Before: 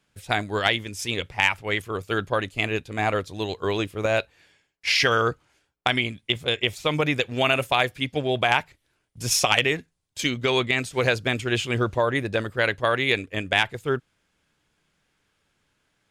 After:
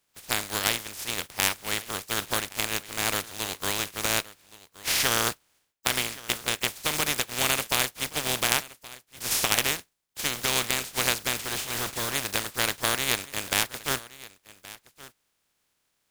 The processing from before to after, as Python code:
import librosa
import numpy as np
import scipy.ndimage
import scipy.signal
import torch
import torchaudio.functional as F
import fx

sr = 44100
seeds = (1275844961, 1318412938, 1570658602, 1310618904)

p1 = fx.spec_flatten(x, sr, power=0.22)
p2 = fx.overload_stage(p1, sr, gain_db=22.5, at=(11.43, 12.14))
p3 = p2 + fx.echo_single(p2, sr, ms=1122, db=-19.0, dry=0)
y = F.gain(torch.from_numpy(p3), -3.5).numpy()